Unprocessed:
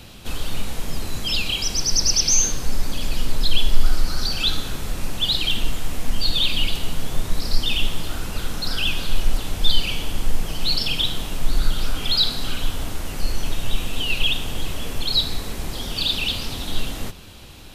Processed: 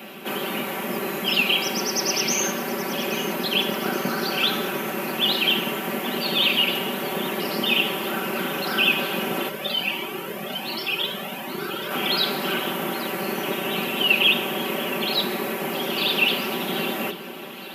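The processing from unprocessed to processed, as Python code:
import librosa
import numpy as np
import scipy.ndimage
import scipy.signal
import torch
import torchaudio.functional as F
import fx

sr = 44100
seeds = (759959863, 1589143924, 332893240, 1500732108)

y = fx.octave_divider(x, sr, octaves=1, level_db=4.0)
y = scipy.signal.sosfilt(scipy.signal.butter(4, 250.0, 'highpass', fs=sr, output='sos'), y)
y = fx.band_shelf(y, sr, hz=5900.0, db=-14.5, octaves=1.7)
y = y + 0.88 * np.pad(y, (int(5.2 * sr / 1000.0), 0))[:len(y)]
y = fx.echo_alternate(y, sr, ms=411, hz=1700.0, feedback_pct=73, wet_db=-13.5)
y = fx.comb_cascade(y, sr, direction='rising', hz=1.3, at=(9.48, 11.9), fade=0.02)
y = y * librosa.db_to_amplitude(6.0)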